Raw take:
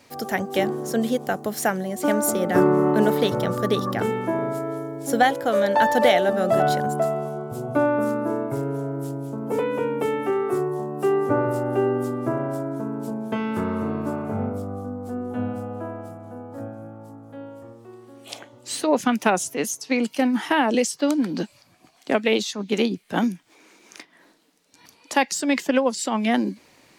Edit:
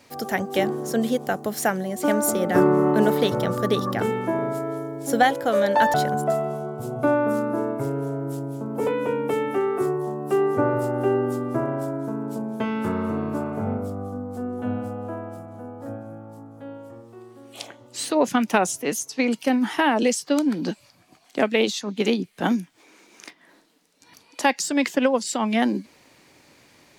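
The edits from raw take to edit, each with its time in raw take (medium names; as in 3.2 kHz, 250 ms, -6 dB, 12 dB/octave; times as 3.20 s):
5.94–6.66 s: delete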